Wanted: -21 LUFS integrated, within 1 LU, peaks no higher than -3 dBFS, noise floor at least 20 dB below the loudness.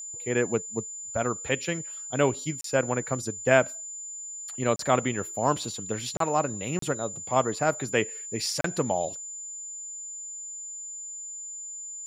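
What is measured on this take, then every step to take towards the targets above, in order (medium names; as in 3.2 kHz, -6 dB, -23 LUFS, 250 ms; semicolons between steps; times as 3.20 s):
dropouts 5; longest dropout 33 ms; steady tone 7.1 kHz; tone level -36 dBFS; loudness -29.0 LUFS; peak level -6.5 dBFS; loudness target -21.0 LUFS
-> interpolate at 2.61/4.76/6.17/6.79/8.61 s, 33 ms; band-stop 7.1 kHz, Q 30; trim +8 dB; peak limiter -3 dBFS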